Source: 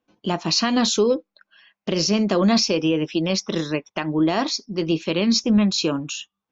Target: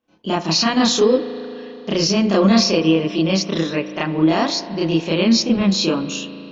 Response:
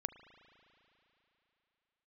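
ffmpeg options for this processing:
-filter_complex "[0:a]asplit=2[link_01][link_02];[1:a]atrim=start_sample=2205,lowpass=6200,adelay=31[link_03];[link_02][link_03]afir=irnorm=-1:irlink=0,volume=5.5dB[link_04];[link_01][link_04]amix=inputs=2:normalize=0,volume=-1.5dB"

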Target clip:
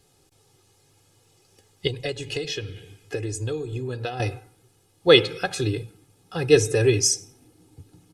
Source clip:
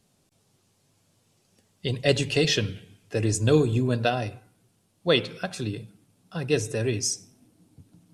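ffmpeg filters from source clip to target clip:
ffmpeg -i in.wav -filter_complex "[0:a]aecho=1:1:2.4:0.75,asettb=1/sr,asplit=3[link_01][link_02][link_03];[link_01]atrim=end=1.874[link_04];[link_02]atrim=start=1.87:end=4.2,asetpts=PTS-STARTPTS,afade=type=in:duration=0.004:curve=qsin,afade=type=out:start_time=2.326:duration=0.004:curve=qsin,acompressor=threshold=-31dB:ratio=10[link_05];[link_03]atrim=start=4.196[link_06];[link_04][link_05]acrossfade=duration=0.004:curve1=hsin:curve2=qsin[link_07];[link_07][link_06]acrossfade=duration=0.004:curve1=qsin:curve2=hsin,volume=4.5dB" out.wav

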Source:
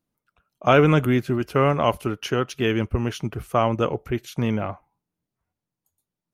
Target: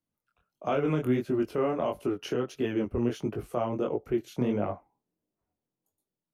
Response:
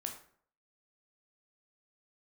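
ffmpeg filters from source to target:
-filter_complex "[0:a]acrossover=split=250|650|3100[link_01][link_02][link_03][link_04];[link_02]dynaudnorm=framelen=190:gausssize=5:maxgain=13dB[link_05];[link_01][link_05][link_03][link_04]amix=inputs=4:normalize=0,alimiter=limit=-10.5dB:level=0:latency=1:release=226,flanger=delay=19:depth=6.5:speed=1.5,volume=-5dB"

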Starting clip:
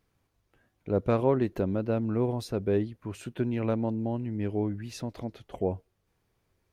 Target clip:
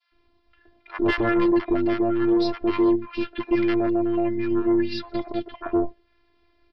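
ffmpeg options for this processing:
ffmpeg -i in.wav -filter_complex "[0:a]adynamicequalizer=threshold=0.00562:dfrequency=1700:dqfactor=0.97:tfrequency=1700:tqfactor=0.97:attack=5:release=100:ratio=0.375:range=2.5:mode=boostabove:tftype=bell,afftfilt=real='hypot(re,im)*cos(PI*b)':imag='0':win_size=512:overlap=0.75,aresample=11025,aeval=exprs='0.188*sin(PI/2*3.16*val(0)/0.188)':channel_layout=same,aresample=44100,acrossover=split=1000[link_01][link_02];[link_01]adelay=120[link_03];[link_03][link_02]amix=inputs=2:normalize=0,acontrast=88,volume=-6.5dB" out.wav

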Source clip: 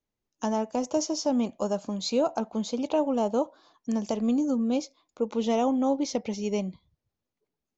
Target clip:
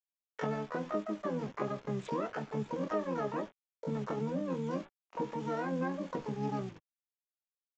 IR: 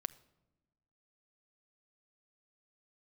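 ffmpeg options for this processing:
-filter_complex "[0:a]adynamicsmooth=sensitivity=3:basefreq=1100,highshelf=frequency=2200:gain=-3[link_01];[1:a]atrim=start_sample=2205,atrim=end_sample=3528[link_02];[link_01][link_02]afir=irnorm=-1:irlink=0,acompressor=threshold=-38dB:ratio=5,highpass=frequency=130:width=0.5412,highpass=frequency=130:width=1.3066,acrusher=bits=8:mix=0:aa=0.000001,aresample=8000,aresample=44100,asplit=2[link_03][link_04];[link_04]adelay=19,volume=-7dB[link_05];[link_03][link_05]amix=inputs=2:normalize=0,asplit=3[link_06][link_07][link_08];[link_07]asetrate=29433,aresample=44100,atempo=1.49831,volume=-2dB[link_09];[link_08]asetrate=88200,aresample=44100,atempo=0.5,volume=-1dB[link_10];[link_06][link_09][link_10]amix=inputs=3:normalize=0"

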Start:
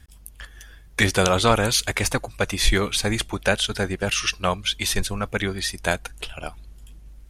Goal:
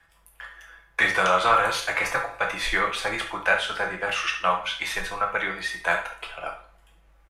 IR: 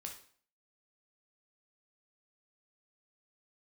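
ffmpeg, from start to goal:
-filter_complex "[0:a]acrossover=split=550 2300:gain=0.0794 1 0.126[link_01][link_02][link_03];[link_01][link_02][link_03]amix=inputs=3:normalize=0,aecho=1:1:6:0.42,acrossover=split=220|740|6800[link_04][link_05][link_06][link_07];[link_05]alimiter=level_in=5dB:limit=-24dB:level=0:latency=1,volume=-5dB[link_08];[link_04][link_08][link_06][link_07]amix=inputs=4:normalize=0[link_09];[1:a]atrim=start_sample=2205[link_10];[link_09][link_10]afir=irnorm=-1:irlink=0,volume=8.5dB"

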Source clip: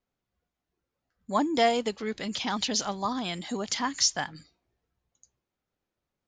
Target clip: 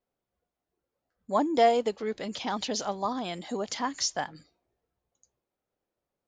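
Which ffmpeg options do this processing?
ffmpeg -i in.wav -af "equalizer=frequency=550:width=0.73:gain=9,volume=-5.5dB" out.wav

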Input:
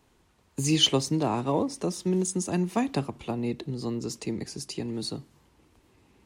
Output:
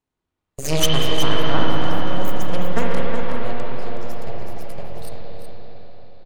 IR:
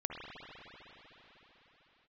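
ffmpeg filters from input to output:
-filter_complex "[0:a]aeval=exprs='0.422*(cos(1*acos(clip(val(0)/0.422,-1,1)))-cos(1*PI/2))+0.0473*(cos(3*acos(clip(val(0)/0.422,-1,1)))-cos(3*PI/2))+0.0531*(cos(5*acos(clip(val(0)/0.422,-1,1)))-cos(5*PI/2))+0.15*(cos(6*acos(clip(val(0)/0.422,-1,1)))-cos(6*PI/2))+0.0841*(cos(7*acos(clip(val(0)/0.422,-1,1)))-cos(7*PI/2))':channel_layout=same,aecho=1:1:370:0.355[link_01];[1:a]atrim=start_sample=2205,asetrate=48510,aresample=44100[link_02];[link_01][link_02]afir=irnorm=-1:irlink=0,volume=2.5dB"

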